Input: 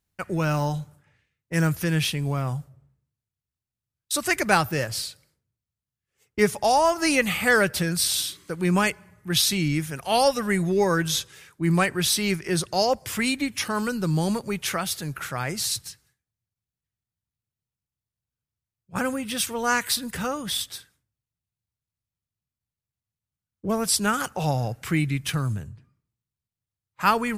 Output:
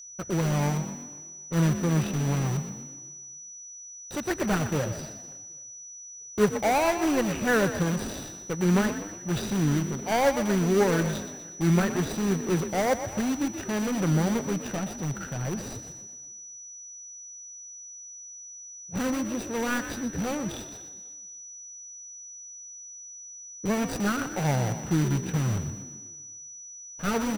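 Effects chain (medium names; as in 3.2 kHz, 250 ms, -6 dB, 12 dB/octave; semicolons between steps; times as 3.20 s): median filter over 41 samples; dynamic bell 1.5 kHz, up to +5 dB, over -43 dBFS, Q 1.4; in parallel at -8 dB: integer overflow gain 26.5 dB; on the sum: frequency-shifting echo 122 ms, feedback 44%, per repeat +45 Hz, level -11 dB; whistle 5.9 kHz -42 dBFS; on a send: feedback delay 260 ms, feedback 43%, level -23 dB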